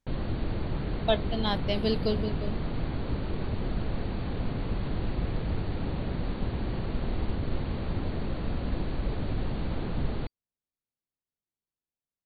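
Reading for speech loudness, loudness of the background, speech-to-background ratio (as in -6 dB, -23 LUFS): -31.0 LUFS, -33.5 LUFS, 2.5 dB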